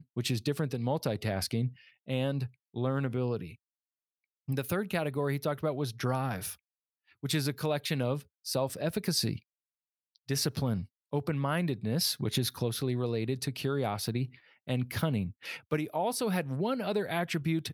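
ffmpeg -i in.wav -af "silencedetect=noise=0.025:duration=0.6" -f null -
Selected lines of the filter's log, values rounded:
silence_start: 3.43
silence_end: 4.49 | silence_duration: 1.06
silence_start: 6.52
silence_end: 7.24 | silence_duration: 0.72
silence_start: 9.36
silence_end: 10.30 | silence_duration: 0.94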